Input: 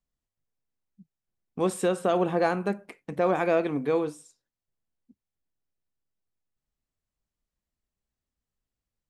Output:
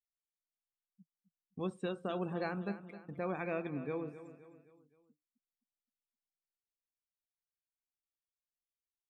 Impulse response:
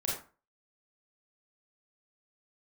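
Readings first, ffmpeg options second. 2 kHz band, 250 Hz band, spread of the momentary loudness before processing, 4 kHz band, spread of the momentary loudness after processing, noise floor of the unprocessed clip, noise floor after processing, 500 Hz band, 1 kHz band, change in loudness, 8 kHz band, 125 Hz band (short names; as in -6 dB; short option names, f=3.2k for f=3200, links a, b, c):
-10.5 dB, -10.5 dB, 11 LU, -11.0 dB, 15 LU, under -85 dBFS, under -85 dBFS, -14.0 dB, -14.0 dB, -12.5 dB, under -25 dB, -7.5 dB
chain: -filter_complex "[0:a]acrossover=split=6100[a][b];[b]acompressor=threshold=-56dB:ratio=4:attack=1:release=60[c];[a][c]amix=inputs=2:normalize=0,afftdn=nr=23:nf=-39,equalizer=f=650:t=o:w=2.9:g=-11.5,aecho=1:1:260|520|780|1040:0.211|0.0972|0.0447|0.0206,volume=-4dB"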